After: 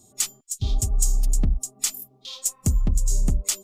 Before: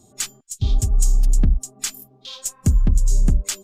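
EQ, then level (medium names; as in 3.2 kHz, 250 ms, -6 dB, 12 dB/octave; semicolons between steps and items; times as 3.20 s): treble shelf 4.7 kHz +9.5 dB; dynamic bell 680 Hz, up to +4 dB, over -42 dBFS, Q 0.89; band-stop 1.6 kHz, Q 8.4; -5.0 dB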